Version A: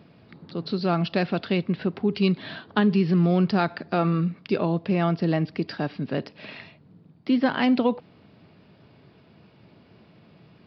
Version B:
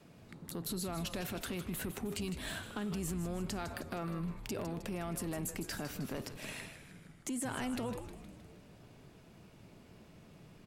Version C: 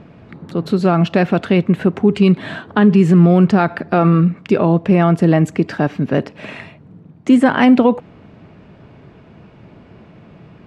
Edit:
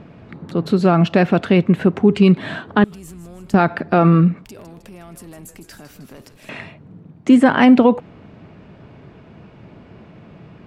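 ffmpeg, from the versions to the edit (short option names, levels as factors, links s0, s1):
-filter_complex "[1:a]asplit=2[s0][s1];[2:a]asplit=3[s2][s3][s4];[s2]atrim=end=2.842[s5];[s0]atrim=start=2.838:end=3.542[s6];[s3]atrim=start=3.538:end=4.452[s7];[s1]atrim=start=4.448:end=6.492[s8];[s4]atrim=start=6.488[s9];[s5][s6]acrossfade=d=0.004:c1=hsin:c2=hsin[s10];[s10][s7]acrossfade=d=0.004:c1=hsin:c2=hsin[s11];[s11][s8]acrossfade=d=0.004:c1=hsin:c2=hsin[s12];[s12][s9]acrossfade=d=0.004:c1=hsin:c2=hsin"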